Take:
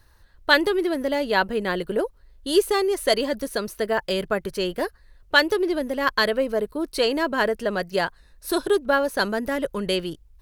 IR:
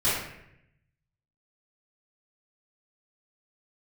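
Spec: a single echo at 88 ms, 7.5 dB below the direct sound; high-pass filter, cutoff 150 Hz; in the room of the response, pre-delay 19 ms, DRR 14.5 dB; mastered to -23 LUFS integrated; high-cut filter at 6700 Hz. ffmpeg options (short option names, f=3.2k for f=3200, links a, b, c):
-filter_complex "[0:a]highpass=150,lowpass=6.7k,aecho=1:1:88:0.422,asplit=2[a][b];[1:a]atrim=start_sample=2205,adelay=19[c];[b][c]afir=irnorm=-1:irlink=0,volume=-28dB[d];[a][d]amix=inputs=2:normalize=0"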